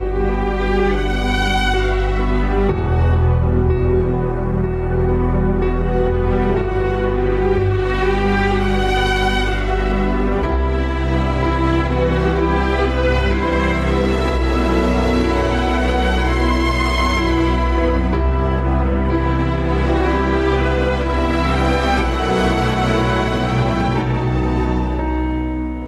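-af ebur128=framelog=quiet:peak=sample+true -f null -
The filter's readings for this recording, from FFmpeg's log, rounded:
Integrated loudness:
  I:         -17.5 LUFS
  Threshold: -27.5 LUFS
Loudness range:
  LRA:         1.0 LU
  Threshold: -37.4 LUFS
  LRA low:   -18.0 LUFS
  LRA high:  -16.9 LUFS
Sample peak:
  Peak:       -5.7 dBFS
True peak:
  Peak:       -5.7 dBFS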